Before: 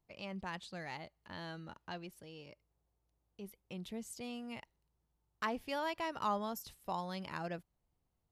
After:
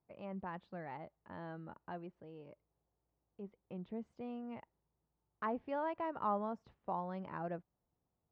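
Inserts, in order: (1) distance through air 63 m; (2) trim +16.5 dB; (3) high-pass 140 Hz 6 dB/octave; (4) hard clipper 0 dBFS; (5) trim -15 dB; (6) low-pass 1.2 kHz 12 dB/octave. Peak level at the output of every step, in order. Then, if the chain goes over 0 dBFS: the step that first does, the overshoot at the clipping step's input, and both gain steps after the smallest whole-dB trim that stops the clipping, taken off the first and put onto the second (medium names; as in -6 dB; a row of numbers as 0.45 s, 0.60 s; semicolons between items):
-23.0 dBFS, -6.5 dBFS, -6.0 dBFS, -6.0 dBFS, -21.0 dBFS, -25.0 dBFS; nothing clips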